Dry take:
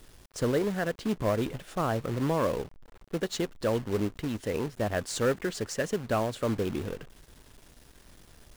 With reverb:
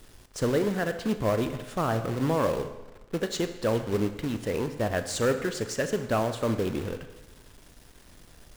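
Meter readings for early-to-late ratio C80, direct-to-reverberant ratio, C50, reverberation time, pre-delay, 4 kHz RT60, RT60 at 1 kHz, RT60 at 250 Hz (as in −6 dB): 12.5 dB, 8.5 dB, 10.5 dB, 1.1 s, 34 ms, 1.0 s, 1.1 s, 1.1 s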